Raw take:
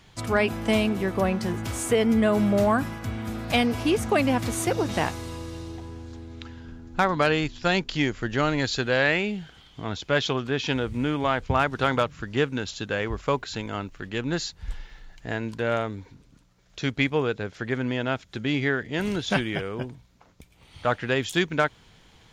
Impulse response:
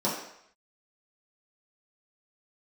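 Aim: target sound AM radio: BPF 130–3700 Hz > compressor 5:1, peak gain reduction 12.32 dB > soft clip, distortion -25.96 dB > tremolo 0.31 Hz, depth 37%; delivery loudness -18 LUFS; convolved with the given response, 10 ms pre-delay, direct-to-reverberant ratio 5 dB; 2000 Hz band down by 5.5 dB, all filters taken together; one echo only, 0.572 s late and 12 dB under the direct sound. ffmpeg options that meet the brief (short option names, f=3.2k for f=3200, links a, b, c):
-filter_complex "[0:a]equalizer=f=2k:t=o:g=-7,aecho=1:1:572:0.251,asplit=2[a][b];[1:a]atrim=start_sample=2205,adelay=10[c];[b][c]afir=irnorm=-1:irlink=0,volume=-15.5dB[d];[a][d]amix=inputs=2:normalize=0,highpass=130,lowpass=3.7k,acompressor=threshold=-25dB:ratio=5,asoftclip=threshold=-16dB,tremolo=f=0.31:d=0.37,volume=14.5dB"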